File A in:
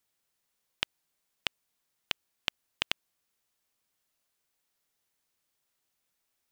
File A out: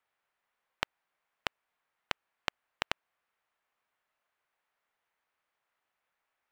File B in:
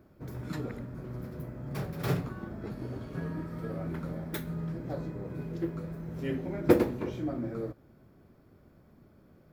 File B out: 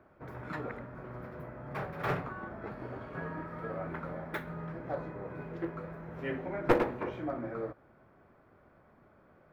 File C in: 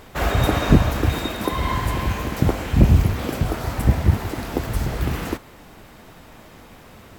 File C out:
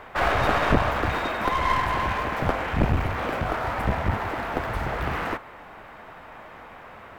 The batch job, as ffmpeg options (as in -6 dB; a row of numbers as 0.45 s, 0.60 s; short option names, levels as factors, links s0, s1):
-filter_complex "[0:a]acrossover=split=570 2400:gain=0.2 1 0.0794[s0][s1][s2];[s0][s1][s2]amix=inputs=3:normalize=0,aeval=exprs='clip(val(0),-1,0.0251)':c=same,volume=2.24"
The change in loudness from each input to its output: -2.5 LU, -3.0 LU, -4.0 LU